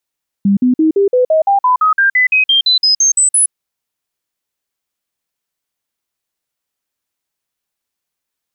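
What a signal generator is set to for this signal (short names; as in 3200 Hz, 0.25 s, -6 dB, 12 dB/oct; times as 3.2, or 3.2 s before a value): stepped sine 199 Hz up, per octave 3, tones 18, 0.12 s, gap 0.05 s -7.5 dBFS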